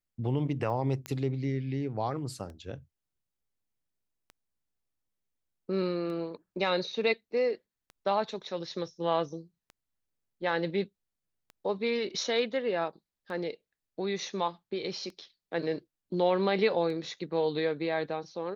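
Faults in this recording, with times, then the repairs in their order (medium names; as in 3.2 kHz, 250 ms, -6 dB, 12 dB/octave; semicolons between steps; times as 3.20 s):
tick 33 1/3 rpm -32 dBFS
1.06 s: pop -20 dBFS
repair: de-click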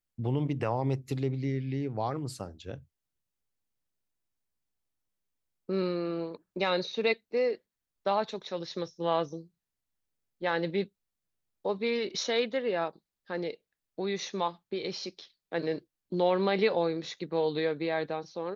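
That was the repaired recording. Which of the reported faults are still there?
nothing left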